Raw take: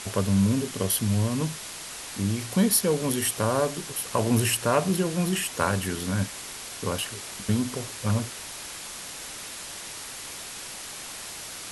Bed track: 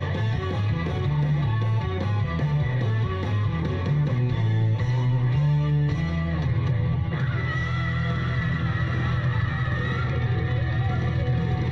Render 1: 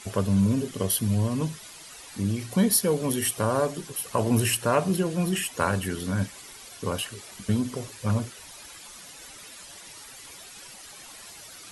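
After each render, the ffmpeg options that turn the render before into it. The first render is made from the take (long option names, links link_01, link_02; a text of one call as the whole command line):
ffmpeg -i in.wav -af "afftdn=noise_reduction=11:noise_floor=-39" out.wav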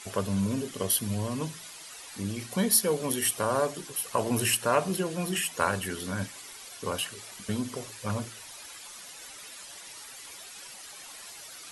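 ffmpeg -i in.wav -af "lowshelf=frequency=310:gain=-8.5,bandreject=frequency=55.96:width_type=h:width=4,bandreject=frequency=111.92:width_type=h:width=4,bandreject=frequency=167.88:width_type=h:width=4,bandreject=frequency=223.84:width_type=h:width=4,bandreject=frequency=279.8:width_type=h:width=4,bandreject=frequency=335.76:width_type=h:width=4" out.wav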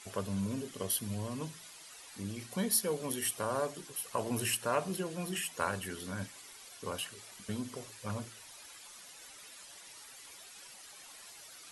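ffmpeg -i in.wav -af "volume=-7dB" out.wav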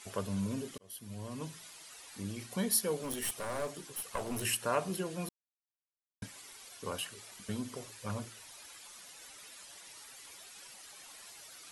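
ffmpeg -i in.wav -filter_complex "[0:a]asettb=1/sr,asplit=3[link_01][link_02][link_03];[link_01]atrim=end=3.044[link_04];[link_02]atrim=start=3.04:end=4.45,asetpts=PTS-STARTPTS,afade=type=in:duration=0.004:curve=qsin,afade=type=out:start_time=1.406:duration=0.004:curve=qsin,aeval=exprs='clip(val(0),-1,0.0133)':channel_layout=same[link_05];[link_03]atrim=start=4.446[link_06];[link_04][link_05]acrossfade=duration=0.004:curve1=hsin:curve2=qsin[link_07];[link_07][link_06]acrossfade=duration=0.004:curve1=qsin:curve2=hsin,asplit=4[link_08][link_09][link_10][link_11];[link_08]atrim=end=0.78,asetpts=PTS-STARTPTS,afade=type=out:start_time=0.776:duration=0.004:curve=hsin[link_12];[link_09]atrim=start=0.78:end=5.29,asetpts=PTS-STARTPTS,afade=type=in:duration=0.78,afade=type=out:start_time=4.506:duration=0.004:curve=hsin[link_13];[link_10]atrim=start=5.29:end=6.22,asetpts=PTS-STARTPTS,volume=0[link_14];[link_11]atrim=start=6.22,asetpts=PTS-STARTPTS,afade=type=in:duration=0.004:curve=hsin[link_15];[link_12][link_13][link_14][link_15]concat=n=4:v=0:a=1" out.wav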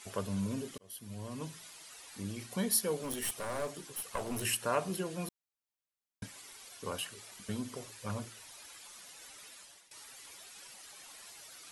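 ffmpeg -i in.wav -filter_complex "[0:a]asplit=2[link_01][link_02];[link_01]atrim=end=9.91,asetpts=PTS-STARTPTS,afade=type=out:start_time=9.37:duration=0.54:curve=qsin:silence=0.141254[link_03];[link_02]atrim=start=9.91,asetpts=PTS-STARTPTS,afade=type=in:duration=0.004:curve=hsin:silence=0.141254[link_04];[link_03][link_04]concat=n=2:v=0:a=1" out.wav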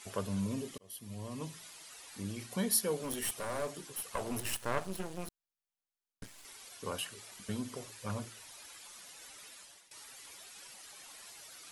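ffmpeg -i in.wav -filter_complex "[0:a]asettb=1/sr,asplit=3[link_01][link_02][link_03];[link_01]atrim=end=0.434[link_04];[link_02]atrim=start=0.43:end=1.54,asetpts=PTS-STARTPTS,afade=type=in:duration=0.004:curve=qsin,afade=type=out:start_time=1.106:duration=0.004:curve=qsin,bandreject=frequency=1500:width=7.2[link_05];[link_03]atrim=start=1.536[link_06];[link_04][link_05]acrossfade=duration=0.004:curve1=hsin:curve2=qsin[link_07];[link_07][link_06]acrossfade=duration=0.004:curve1=qsin:curve2=hsin,asettb=1/sr,asplit=3[link_08][link_09][link_10];[link_08]atrim=end=4.404[link_11];[link_09]atrim=start=4.4:end=6.45,asetpts=PTS-STARTPTS,afade=type=in:duration=0.004:curve=qsin,afade=type=out:start_time=2.046:duration=0.004:curve=qsin,aeval=exprs='max(val(0),0)':channel_layout=same[link_12];[link_10]atrim=start=6.446[link_13];[link_11][link_12]acrossfade=duration=0.004:curve1=hsin:curve2=qsin[link_14];[link_14][link_13]acrossfade=duration=0.004:curve1=qsin:curve2=hsin" out.wav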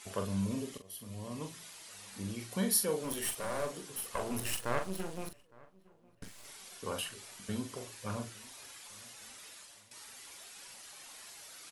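ffmpeg -i in.wav -filter_complex "[0:a]asplit=2[link_01][link_02];[link_02]adelay=42,volume=-7dB[link_03];[link_01][link_03]amix=inputs=2:normalize=0,asplit=2[link_04][link_05];[link_05]adelay=861,lowpass=frequency=2000:poles=1,volume=-24dB,asplit=2[link_06][link_07];[link_07]adelay=861,lowpass=frequency=2000:poles=1,volume=0.41,asplit=2[link_08][link_09];[link_09]adelay=861,lowpass=frequency=2000:poles=1,volume=0.41[link_10];[link_04][link_06][link_08][link_10]amix=inputs=4:normalize=0" out.wav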